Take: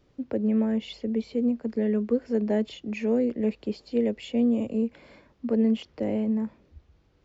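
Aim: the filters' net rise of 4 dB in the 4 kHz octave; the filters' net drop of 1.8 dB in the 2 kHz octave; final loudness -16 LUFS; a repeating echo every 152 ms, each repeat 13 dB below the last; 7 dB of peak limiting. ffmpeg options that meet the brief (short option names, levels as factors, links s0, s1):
-af "equalizer=f=2000:t=o:g=-5,equalizer=f=4000:t=o:g=7.5,alimiter=limit=0.0891:level=0:latency=1,aecho=1:1:152|304|456:0.224|0.0493|0.0108,volume=5.01"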